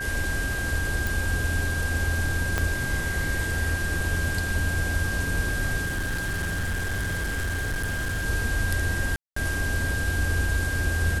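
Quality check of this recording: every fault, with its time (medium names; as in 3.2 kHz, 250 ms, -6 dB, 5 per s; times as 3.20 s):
whine 1.6 kHz -29 dBFS
1.07 s: pop
2.58 s: pop -10 dBFS
5.85–8.26 s: clipped -24 dBFS
9.16–9.36 s: dropout 204 ms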